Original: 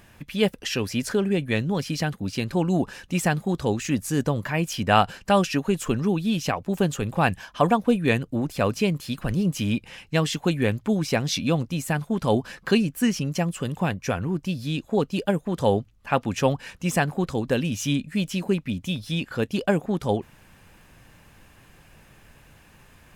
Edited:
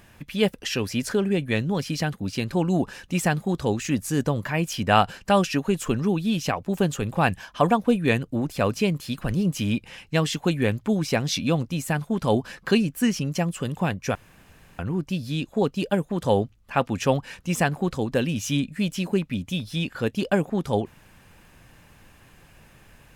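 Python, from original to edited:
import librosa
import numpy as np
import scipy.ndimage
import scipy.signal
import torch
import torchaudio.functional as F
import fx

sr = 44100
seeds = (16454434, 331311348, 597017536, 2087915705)

y = fx.edit(x, sr, fx.insert_room_tone(at_s=14.15, length_s=0.64), tone=tone)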